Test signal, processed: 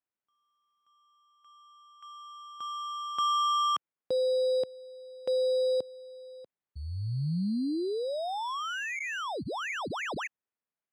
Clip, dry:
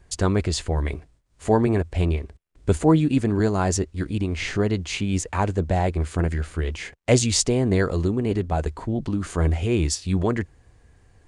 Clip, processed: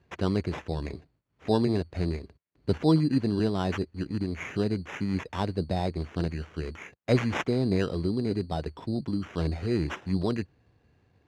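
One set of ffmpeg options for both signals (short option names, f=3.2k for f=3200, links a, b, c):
-af "lowshelf=f=300:g=8.5,acrusher=samples=10:mix=1:aa=0.000001,highpass=140,lowpass=4.3k,volume=-8.5dB"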